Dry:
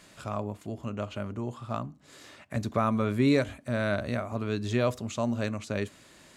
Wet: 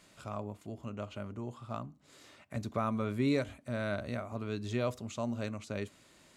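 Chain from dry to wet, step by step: band-stop 1.7 kHz, Q 16; trim -6.5 dB

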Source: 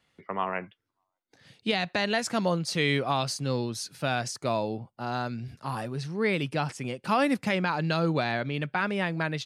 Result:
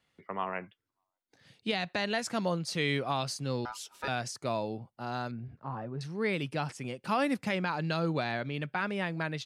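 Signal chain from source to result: 3.65–4.08 s: ring modulator 1.1 kHz; 5.31–6.01 s: low-pass 1.3 kHz 12 dB/octave; trim -4.5 dB

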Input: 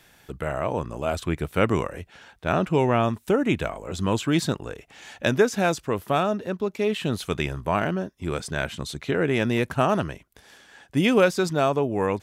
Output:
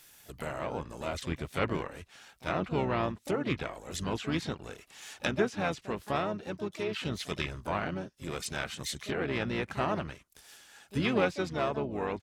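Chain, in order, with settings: low-pass that closes with the level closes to 2.7 kHz, closed at -19.5 dBFS; pre-emphasis filter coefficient 0.8; harmony voices -12 st -10 dB, -3 st -9 dB, +7 st -11 dB; trim +3 dB

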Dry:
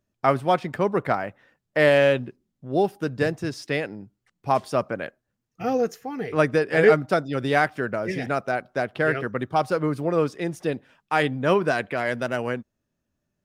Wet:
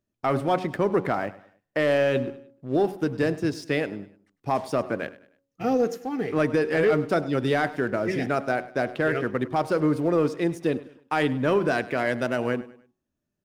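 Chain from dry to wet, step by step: peaking EQ 310 Hz +5 dB 0.97 oct; de-hum 92.3 Hz, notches 12; waveshaping leveller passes 1; peak limiter -10 dBFS, peak gain reduction 6.5 dB; on a send: feedback delay 101 ms, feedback 38%, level -18 dB; on the sum: trim -4 dB

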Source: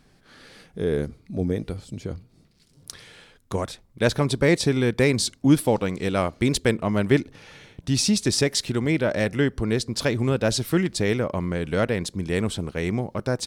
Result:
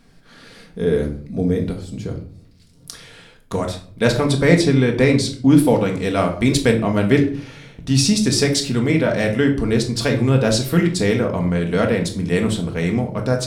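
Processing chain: 4.60–5.58 s: treble shelf 8.5 kHz -> 5.3 kHz -9.5 dB; simulated room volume 560 m³, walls furnished, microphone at 1.7 m; trim +2.5 dB

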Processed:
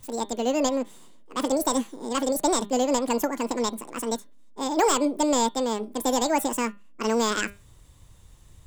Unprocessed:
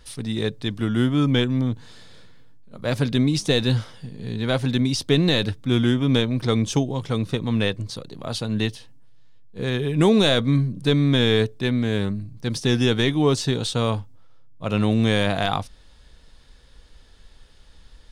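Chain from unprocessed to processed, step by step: de-hum 96.57 Hz, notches 22; wide varispeed 2.09×; trim -3.5 dB

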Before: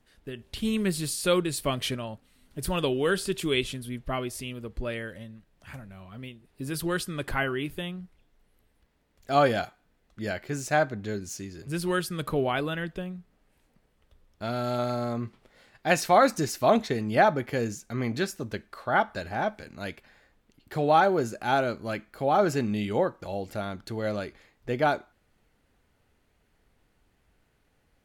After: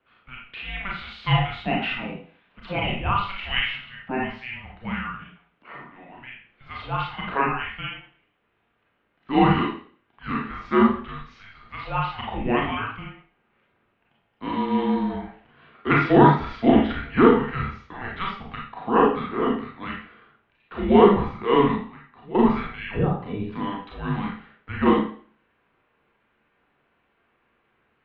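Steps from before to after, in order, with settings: 21.73–22.35 s: slow attack 667 ms; Schroeder reverb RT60 0.46 s, combs from 28 ms, DRR -3 dB; mistuned SSB -390 Hz 570–3400 Hz; trim +3 dB

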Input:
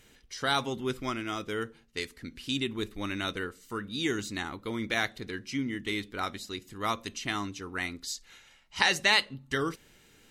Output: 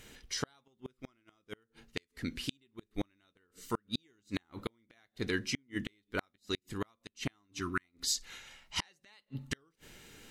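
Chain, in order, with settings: spectral replace 7.61–7.82 s, 400–960 Hz before; inverted gate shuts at -24 dBFS, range -42 dB; trim +4.5 dB

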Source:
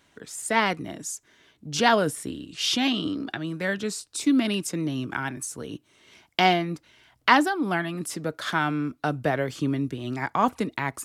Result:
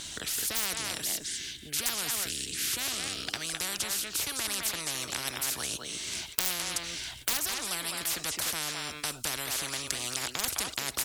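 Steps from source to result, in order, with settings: 1.08–3.54 s: high-order bell 780 Hz -11 dB; wavefolder -11 dBFS; ten-band graphic EQ 125 Hz -5 dB, 250 Hz -6 dB, 500 Hz -10 dB, 1 kHz -9 dB, 2 kHz -7 dB, 4 kHz +7 dB, 8 kHz +9 dB; speakerphone echo 210 ms, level -11 dB; spectrum-flattening compressor 10:1; trim +2 dB

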